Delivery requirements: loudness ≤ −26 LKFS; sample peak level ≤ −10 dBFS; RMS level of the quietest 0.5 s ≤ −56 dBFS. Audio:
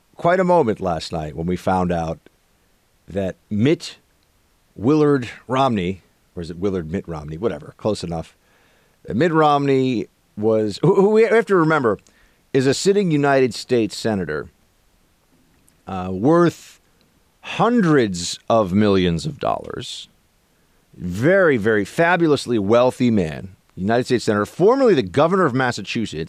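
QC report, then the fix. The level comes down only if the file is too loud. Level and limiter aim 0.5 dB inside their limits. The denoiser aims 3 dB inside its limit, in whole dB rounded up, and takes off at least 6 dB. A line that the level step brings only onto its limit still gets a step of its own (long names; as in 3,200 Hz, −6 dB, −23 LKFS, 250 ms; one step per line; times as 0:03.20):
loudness −19.0 LKFS: out of spec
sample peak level −5.0 dBFS: out of spec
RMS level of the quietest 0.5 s −60 dBFS: in spec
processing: level −7.5 dB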